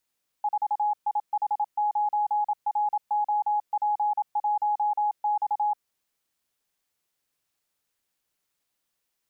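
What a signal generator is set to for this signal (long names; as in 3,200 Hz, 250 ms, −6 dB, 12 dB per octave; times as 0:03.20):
Morse code "4IH9ROP1X" 27 words per minute 836 Hz −21.5 dBFS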